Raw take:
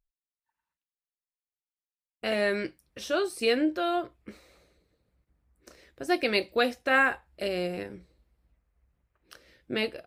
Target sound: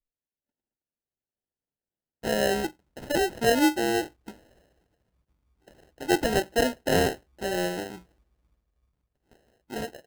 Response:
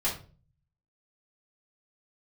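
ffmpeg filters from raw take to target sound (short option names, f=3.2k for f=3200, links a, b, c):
-af "adynamicequalizer=threshold=0.01:dfrequency=320:dqfactor=0.91:tfrequency=320:tqfactor=0.91:attack=5:release=100:ratio=0.375:range=3:mode=boostabove:tftype=bell,acrusher=samples=38:mix=1:aa=0.000001,dynaudnorm=f=190:g=13:m=7dB,volume=-7.5dB"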